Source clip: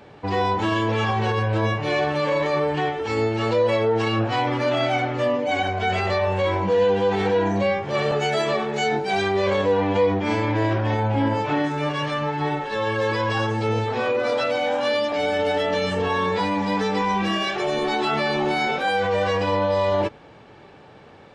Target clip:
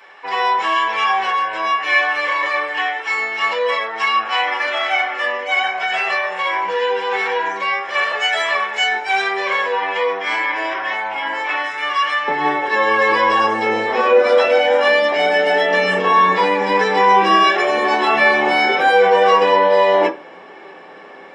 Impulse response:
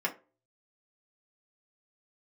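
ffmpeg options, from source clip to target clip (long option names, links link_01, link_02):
-filter_complex "[0:a]asetnsamples=nb_out_samples=441:pad=0,asendcmd='12.28 highpass f 360',highpass=1100[link_01];[1:a]atrim=start_sample=2205[link_02];[link_01][link_02]afir=irnorm=-1:irlink=0,volume=3.5dB"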